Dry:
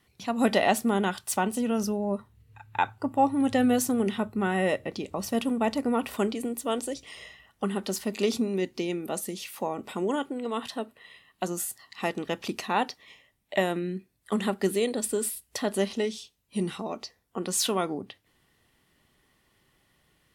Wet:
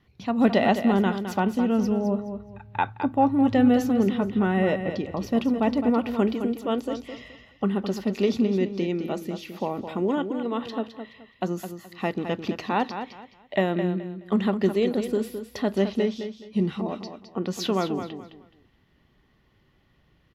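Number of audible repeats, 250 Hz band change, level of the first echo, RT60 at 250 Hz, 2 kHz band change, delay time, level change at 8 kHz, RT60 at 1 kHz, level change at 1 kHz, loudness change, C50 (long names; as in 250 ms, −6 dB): 3, +5.5 dB, −9.0 dB, no reverb audible, 0.0 dB, 212 ms, below −10 dB, no reverb audible, +1.5 dB, +3.5 dB, no reverb audible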